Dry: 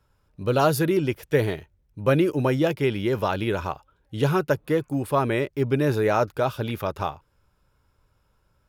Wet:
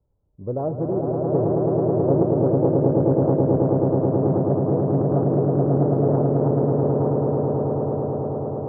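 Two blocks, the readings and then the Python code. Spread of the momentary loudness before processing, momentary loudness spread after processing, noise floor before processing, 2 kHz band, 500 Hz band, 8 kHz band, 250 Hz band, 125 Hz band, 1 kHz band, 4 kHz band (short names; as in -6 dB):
9 LU, 6 LU, -67 dBFS, under -20 dB, +4.0 dB, under -35 dB, +5.5 dB, +6.5 dB, -1.0 dB, under -40 dB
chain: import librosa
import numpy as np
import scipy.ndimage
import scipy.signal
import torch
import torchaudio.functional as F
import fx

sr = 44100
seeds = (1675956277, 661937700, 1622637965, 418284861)

y = scipy.signal.sosfilt(scipy.signal.cheby2(4, 80, 4200.0, 'lowpass', fs=sr, output='sos'), x)
y = fx.echo_swell(y, sr, ms=108, loudest=8, wet_db=-3.5)
y = fx.doppler_dist(y, sr, depth_ms=0.42)
y = y * 10.0 ** (-4.0 / 20.0)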